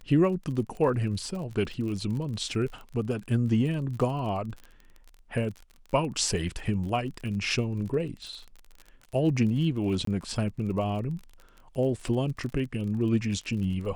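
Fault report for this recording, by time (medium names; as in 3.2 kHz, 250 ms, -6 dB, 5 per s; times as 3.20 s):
crackle 36 per s -36 dBFS
10.05–10.07 s: dropout 23 ms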